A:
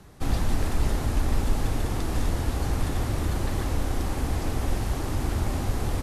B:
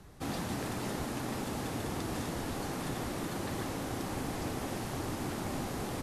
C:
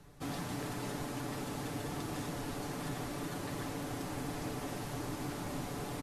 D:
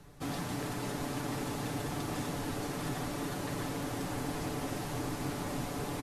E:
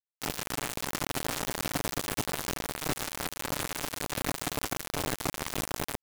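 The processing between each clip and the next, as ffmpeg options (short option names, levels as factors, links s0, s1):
-af "afftfilt=real='re*lt(hypot(re,im),0.316)':imag='im*lt(hypot(re,im),0.316)':win_size=1024:overlap=0.75,volume=0.631"
-af "aecho=1:1:6.9:0.5,asoftclip=type=hard:threshold=0.0473,volume=0.631"
-af "aecho=1:1:790:0.398,volume=1.33"
-af "acrusher=bits=4:mix=0:aa=0.000001,volume=1.68"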